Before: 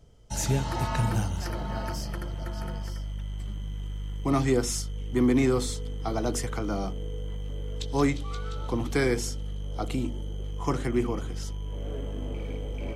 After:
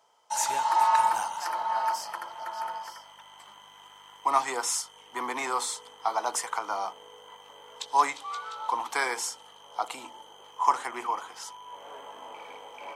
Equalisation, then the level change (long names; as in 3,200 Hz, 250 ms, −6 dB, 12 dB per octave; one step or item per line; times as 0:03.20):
high-pass with resonance 930 Hz, resonance Q 5.6
dynamic equaliser 8,500 Hz, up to +5 dB, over −52 dBFS, Q 1.8
0.0 dB